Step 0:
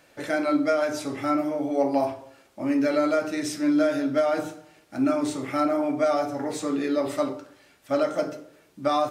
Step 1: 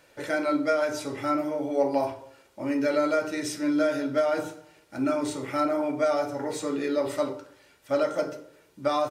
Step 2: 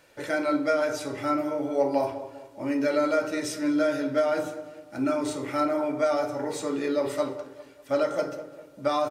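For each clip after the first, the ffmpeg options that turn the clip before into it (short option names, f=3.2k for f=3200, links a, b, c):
-af "aecho=1:1:2.1:0.32,volume=-1.5dB"
-filter_complex "[0:a]asplit=2[a][b];[b]adelay=199,lowpass=f=1.8k:p=1,volume=-12.5dB,asplit=2[c][d];[d]adelay=199,lowpass=f=1.8k:p=1,volume=0.46,asplit=2[e][f];[f]adelay=199,lowpass=f=1.8k:p=1,volume=0.46,asplit=2[g][h];[h]adelay=199,lowpass=f=1.8k:p=1,volume=0.46,asplit=2[i][j];[j]adelay=199,lowpass=f=1.8k:p=1,volume=0.46[k];[a][c][e][g][i][k]amix=inputs=6:normalize=0"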